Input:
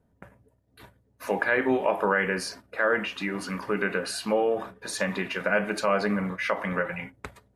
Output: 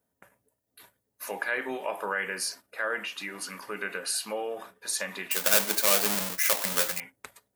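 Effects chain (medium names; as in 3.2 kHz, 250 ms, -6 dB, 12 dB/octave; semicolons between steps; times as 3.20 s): 5.31–7.00 s: square wave that keeps the level; RIAA curve recording; trim -6.5 dB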